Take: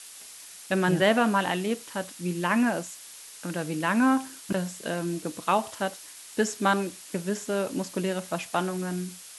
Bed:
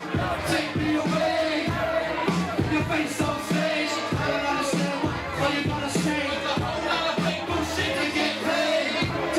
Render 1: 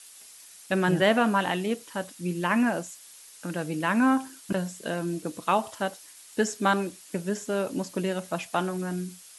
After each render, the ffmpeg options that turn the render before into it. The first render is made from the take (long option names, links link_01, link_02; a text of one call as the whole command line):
ffmpeg -i in.wav -af "afftdn=noise_reduction=6:noise_floor=-46" out.wav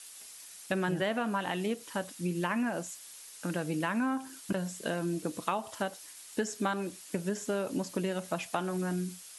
ffmpeg -i in.wav -af "acompressor=threshold=-28dB:ratio=5" out.wav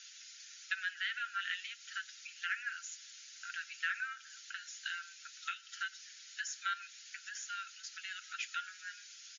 ffmpeg -i in.wav -af "afftfilt=real='re*between(b*sr/4096,1300,7100)':imag='im*between(b*sr/4096,1300,7100)':win_size=4096:overlap=0.75,aecho=1:1:7.2:0.46" out.wav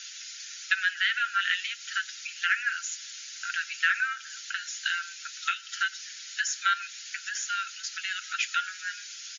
ffmpeg -i in.wav -af "volume=11.5dB" out.wav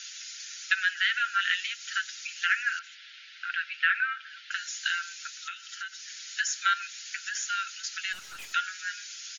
ffmpeg -i in.wav -filter_complex "[0:a]asettb=1/sr,asplit=3[link_01][link_02][link_03];[link_01]atrim=end=2.794[link_04];[link_02]atrim=start=2.79:end=4.51,asetpts=PTS-STARTPTS,afade=type=in:duration=0.004:curve=qsin,afade=type=out:start_time=1.716:duration=0.004:curve=qsin,lowpass=frequency=3500:width=0.5412,lowpass=frequency=3500:width=1.3066[link_05];[link_03]atrim=start=4.506[link_06];[link_04][link_05]acrossfade=duration=0.004:curve1=hsin:curve2=qsin[link_07];[link_07][link_06]acrossfade=duration=0.004:curve1=qsin:curve2=hsin,asettb=1/sr,asplit=3[link_08][link_09][link_10];[link_08]atrim=end=5.294[link_11];[link_09]atrim=start=5.29:end=6.08,asetpts=PTS-STARTPTS,afade=type=in:duration=0.004:curve=qsin,afade=type=out:start_time=0.786:duration=0.004:curve=qsin,acompressor=threshold=-41dB:ratio=2:attack=3.2:release=140:knee=1:detection=peak[link_12];[link_10]atrim=start=6.076[link_13];[link_11][link_12]acrossfade=duration=0.004:curve1=hsin:curve2=qsin[link_14];[link_14][link_13]acrossfade=duration=0.004:curve1=qsin:curve2=hsin,asplit=3[link_15][link_16][link_17];[link_15]afade=type=out:start_time=8.12:duration=0.02[link_18];[link_16]aeval=exprs='(tanh(112*val(0)+0.55)-tanh(0.55))/112':channel_layout=same,afade=type=in:start_time=8.12:duration=0.02,afade=type=out:start_time=8.52:duration=0.02[link_19];[link_17]afade=type=in:start_time=8.52:duration=0.02[link_20];[link_18][link_19][link_20]amix=inputs=3:normalize=0" out.wav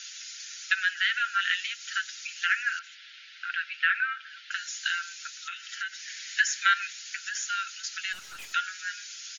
ffmpeg -i in.wav -filter_complex "[0:a]asettb=1/sr,asplit=3[link_01][link_02][link_03];[link_01]atrim=end=1.164[link_04];[link_02]atrim=start=1.16:end=1.65,asetpts=PTS-STARTPTS,afade=type=in:duration=0.004:curve=qsin,afade=type=out:start_time=0.486:duration=0.004:curve=qsin,highpass=330[link_05];[link_03]atrim=start=1.646[link_06];[link_04][link_05]acrossfade=duration=0.004:curve1=hsin:curve2=qsin[link_07];[link_07][link_06]acrossfade=duration=0.004:curve1=qsin:curve2=hsin,asettb=1/sr,asplit=3[link_08][link_09][link_10];[link_08]atrim=end=5.524[link_11];[link_09]atrim=start=5.52:end=6.93,asetpts=PTS-STARTPTS,afade=type=in:duration=0.004:curve=qsin,afade=type=out:start_time=1.406:duration=0.004:curve=qsin,highpass=frequency=1800:width_type=q:width=2.3[link_12];[link_10]atrim=start=6.926[link_13];[link_11][link_12]acrossfade=duration=0.004:curve1=hsin:curve2=qsin[link_14];[link_14][link_13]acrossfade=duration=0.004:curve1=qsin:curve2=hsin" out.wav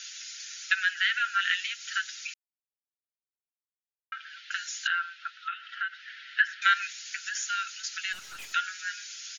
ffmpeg -i in.wav -filter_complex "[0:a]asettb=1/sr,asplit=3[link_01][link_02][link_03];[link_01]atrim=end=4.874[link_04];[link_02]atrim=start=4.87:end=6.62,asetpts=PTS-STARTPTS,afade=type=in:duration=0.004:curve=qsin,afade=type=out:start_time=1.746:duration=0.004:curve=qsin,highpass=290,equalizer=frequency=600:width_type=q:width=4:gain=-8,equalizer=frequency=1300:width_type=q:width=4:gain=8,equalizer=frequency=2300:width_type=q:width=4:gain=-6,lowpass=frequency=3200:width=0.5412,lowpass=frequency=3200:width=1.3066[link_05];[link_03]atrim=start=6.616[link_06];[link_04][link_05]acrossfade=duration=0.004:curve1=hsin:curve2=qsin[link_07];[link_07][link_06]acrossfade=duration=0.004:curve1=qsin:curve2=hsin,asettb=1/sr,asplit=3[link_08][link_09][link_10];[link_08]atrim=end=7.304[link_11];[link_09]atrim=start=7.3:end=7.83,asetpts=PTS-STARTPTS,afade=type=in:duration=0.004:curve=qsin,afade=type=out:start_time=0.526:duration=0.004:curve=qsin,highpass=500[link_12];[link_10]atrim=start=7.826[link_13];[link_11][link_12]acrossfade=duration=0.004:curve1=hsin:curve2=qsin[link_14];[link_14][link_13]acrossfade=duration=0.004:curve1=qsin:curve2=hsin,asplit=3[link_15][link_16][link_17];[link_15]atrim=end=2.34,asetpts=PTS-STARTPTS,afade=type=out:start_time=2.336:duration=0.004:curve=hsin[link_18];[link_16]atrim=start=2.34:end=4.12,asetpts=PTS-STARTPTS,volume=0[link_19];[link_17]atrim=start=4.12,asetpts=PTS-STARTPTS,afade=type=in:duration=0.004:curve=hsin[link_20];[link_18][link_19][link_20]concat=n=3:v=0:a=1" out.wav